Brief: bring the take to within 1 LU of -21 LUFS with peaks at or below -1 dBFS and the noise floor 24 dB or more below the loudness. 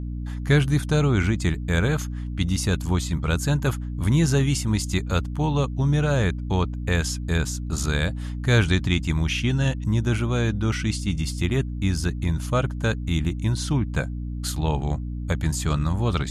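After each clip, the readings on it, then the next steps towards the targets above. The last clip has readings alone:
hum 60 Hz; harmonics up to 300 Hz; hum level -27 dBFS; loudness -24.0 LUFS; peak -6.5 dBFS; loudness target -21.0 LUFS
-> de-hum 60 Hz, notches 5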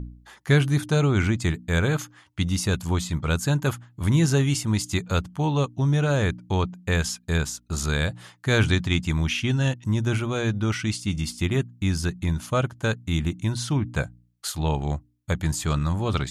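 hum none; loudness -25.0 LUFS; peak -7.0 dBFS; loudness target -21.0 LUFS
-> gain +4 dB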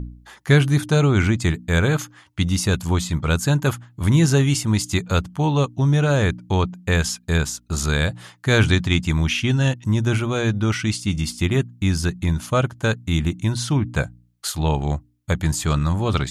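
loudness -21.0 LUFS; peak -3.0 dBFS; noise floor -55 dBFS

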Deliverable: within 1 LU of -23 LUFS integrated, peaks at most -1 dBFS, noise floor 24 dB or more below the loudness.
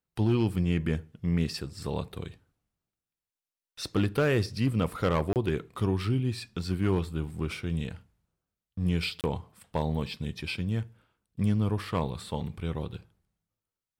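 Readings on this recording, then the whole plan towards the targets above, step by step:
clipped 0.3%; flat tops at -18.5 dBFS; dropouts 2; longest dropout 28 ms; loudness -30.5 LUFS; peak -18.5 dBFS; loudness target -23.0 LUFS
-> clip repair -18.5 dBFS; interpolate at 5.33/9.21, 28 ms; gain +7.5 dB

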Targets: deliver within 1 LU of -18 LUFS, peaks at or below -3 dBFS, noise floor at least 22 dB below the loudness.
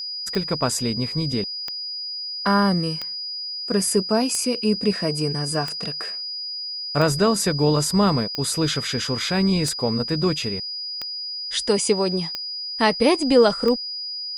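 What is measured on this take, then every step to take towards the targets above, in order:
clicks 11; steady tone 4900 Hz; tone level -28 dBFS; loudness -22.0 LUFS; peak -4.5 dBFS; loudness target -18.0 LUFS
-> de-click; notch 4900 Hz, Q 30; gain +4 dB; limiter -3 dBFS

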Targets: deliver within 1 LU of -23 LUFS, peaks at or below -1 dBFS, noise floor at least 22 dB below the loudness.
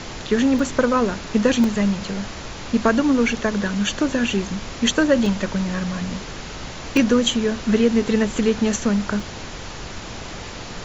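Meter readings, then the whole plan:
dropouts 5; longest dropout 2.0 ms; noise floor -34 dBFS; noise floor target -43 dBFS; loudness -20.5 LUFS; peak -4.5 dBFS; loudness target -23.0 LUFS
-> interpolate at 0.59/1.64/5.26/6.97/9.2, 2 ms; noise print and reduce 9 dB; gain -2.5 dB

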